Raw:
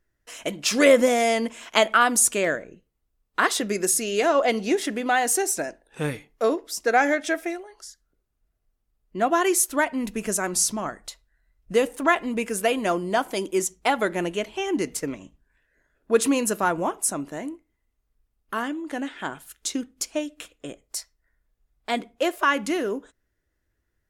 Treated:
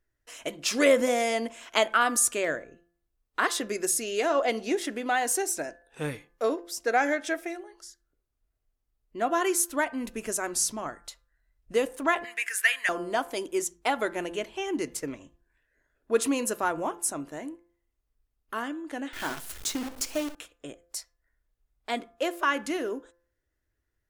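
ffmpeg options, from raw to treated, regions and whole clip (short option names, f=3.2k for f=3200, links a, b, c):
-filter_complex "[0:a]asettb=1/sr,asplit=3[a][b][c];[a]atrim=end=12.244[d];[b]atrim=start=12.24:end=12.89,asetpts=PTS-STARTPTS,afade=t=in:d=0.004:c=qsin,afade=t=out:st=0.646:d=0.004:c=qsin,highpass=f=1.8k:t=q:w=6.4,highshelf=f=5.8k:g=5[e];[c]atrim=start=12.886[f];[d][e]acrossfade=d=0.004:c1=hsin:c2=qsin[g];[g][f]acrossfade=d=0.004:c1=qsin:c2=hsin,asettb=1/sr,asplit=3[h][i][j];[h]atrim=end=19.134[k];[i]atrim=start=19.13:end=20.35,asetpts=PTS-STARTPTS,afade=t=in:d=0.004:c=qsin,afade=t=out:st=1.216:d=0.004:c=qsin,aeval=exprs='val(0)+0.5*0.0355*sgn(val(0))':c=same,bandreject=f=132.8:t=h:w=4,bandreject=f=265.6:t=h:w=4,bandreject=f=398.4:t=h:w=4,acrusher=bits=6:dc=4:mix=0:aa=0.000001[l];[j]atrim=start=20.346[m];[k][l]acrossfade=d=0.004:c1=hsin:c2=qsin[n];[n][m]acrossfade=d=0.004:c1=qsin:c2=hsin,equalizer=f=190:w=6.7:g=-12.5,bandreject=f=172.2:t=h:w=4,bandreject=f=344.4:t=h:w=4,bandreject=f=516.6:t=h:w=4,bandreject=f=688.8:t=h:w=4,bandreject=f=861:t=h:w=4,bandreject=f=1.0332k:t=h:w=4,bandreject=f=1.2054k:t=h:w=4,bandreject=f=1.3776k:t=h:w=4,bandreject=f=1.5498k:t=h:w=4,bandreject=f=1.722k:t=h:w=4,volume=-4.5dB"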